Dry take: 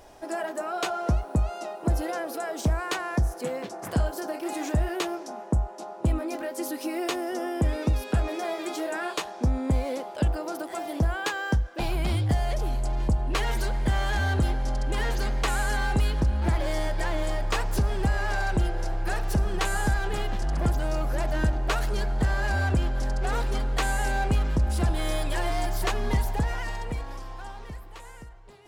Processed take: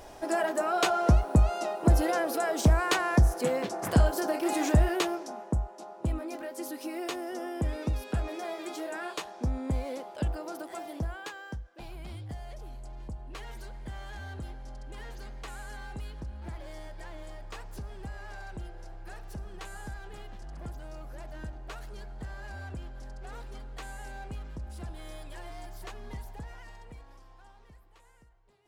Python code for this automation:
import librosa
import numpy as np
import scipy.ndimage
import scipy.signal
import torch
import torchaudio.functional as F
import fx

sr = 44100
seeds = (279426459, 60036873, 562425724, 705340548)

y = fx.gain(x, sr, db=fx.line((4.76, 3.0), (5.71, -6.0), (10.75, -6.0), (11.65, -16.0)))